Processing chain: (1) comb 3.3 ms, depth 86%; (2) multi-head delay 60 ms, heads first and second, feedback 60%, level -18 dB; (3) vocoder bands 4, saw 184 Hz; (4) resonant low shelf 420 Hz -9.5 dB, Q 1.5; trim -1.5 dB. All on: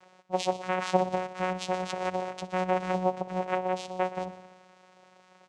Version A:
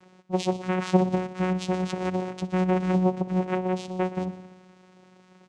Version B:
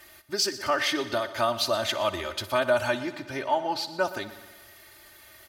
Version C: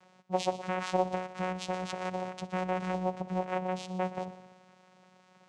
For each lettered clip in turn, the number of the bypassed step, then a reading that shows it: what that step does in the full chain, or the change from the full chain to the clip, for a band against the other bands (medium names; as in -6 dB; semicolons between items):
4, 125 Hz band +11.0 dB; 3, 4 kHz band +10.5 dB; 1, crest factor change -2.5 dB